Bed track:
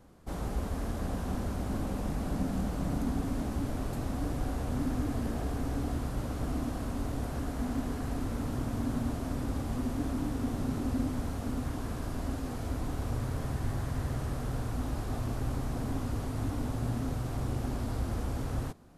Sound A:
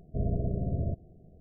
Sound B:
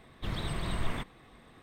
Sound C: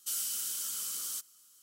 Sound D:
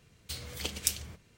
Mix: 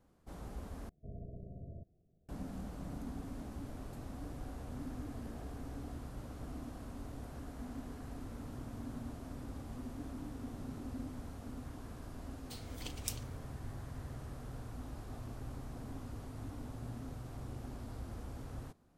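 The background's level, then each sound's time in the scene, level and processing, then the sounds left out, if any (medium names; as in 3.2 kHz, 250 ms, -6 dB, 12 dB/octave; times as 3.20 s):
bed track -12 dB
0.89 s: replace with A -18 dB
12.21 s: add D -11 dB
not used: B, C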